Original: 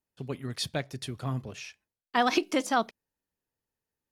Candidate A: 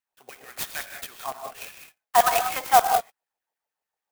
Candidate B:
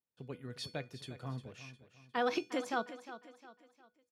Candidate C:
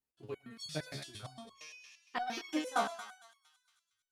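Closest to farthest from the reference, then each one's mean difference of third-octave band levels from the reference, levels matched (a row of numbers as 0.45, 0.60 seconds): B, C, A; 4.0, 9.0, 12.5 decibels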